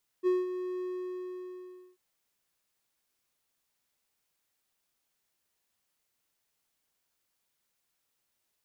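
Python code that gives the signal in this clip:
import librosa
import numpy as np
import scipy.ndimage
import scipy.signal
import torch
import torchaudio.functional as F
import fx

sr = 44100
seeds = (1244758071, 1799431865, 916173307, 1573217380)

y = fx.adsr_tone(sr, wave='triangle', hz=365.0, attack_ms=39.0, decay_ms=191.0, sustain_db=-10.5, held_s=0.58, release_ms=1160.0, level_db=-20.0)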